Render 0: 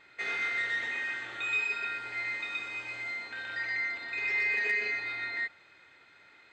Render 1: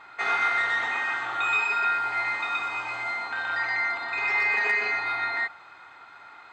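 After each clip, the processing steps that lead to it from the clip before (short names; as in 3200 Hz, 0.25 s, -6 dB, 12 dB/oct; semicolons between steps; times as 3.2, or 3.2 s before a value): band shelf 990 Hz +13.5 dB 1.2 oct; gain +4.5 dB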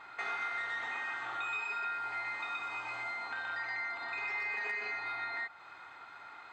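compressor 2.5:1, threshold -36 dBFS, peak gain reduction 10.5 dB; gain -3 dB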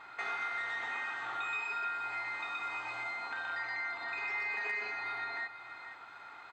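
echo 0.476 s -12.5 dB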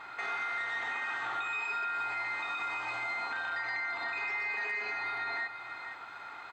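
limiter -32 dBFS, peak gain reduction 5.5 dB; gain +5 dB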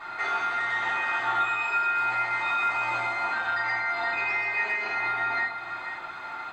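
shoebox room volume 180 m³, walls furnished, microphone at 3.5 m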